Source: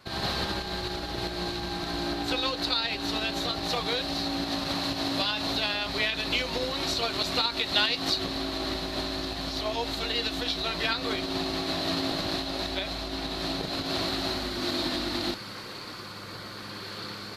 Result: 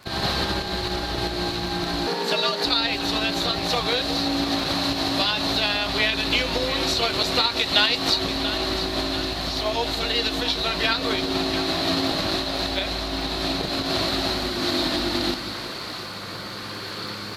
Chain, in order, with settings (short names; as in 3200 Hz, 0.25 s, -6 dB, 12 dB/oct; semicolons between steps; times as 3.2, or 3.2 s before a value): crackle 18/s -38 dBFS; split-band echo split 610 Hz, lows 0.182 s, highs 0.689 s, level -11 dB; 2.07–2.65 frequency shift +120 Hz; gain +5.5 dB